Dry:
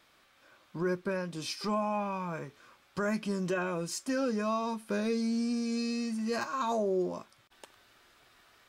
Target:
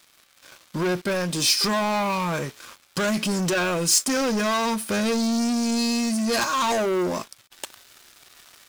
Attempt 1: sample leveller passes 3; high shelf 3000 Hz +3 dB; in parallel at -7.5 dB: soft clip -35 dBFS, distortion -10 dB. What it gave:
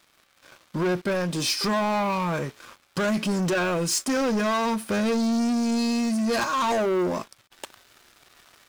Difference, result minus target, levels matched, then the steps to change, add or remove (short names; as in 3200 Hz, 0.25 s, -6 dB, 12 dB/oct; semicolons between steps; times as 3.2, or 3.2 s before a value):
8000 Hz band -5.0 dB
change: high shelf 3000 Hz +11.5 dB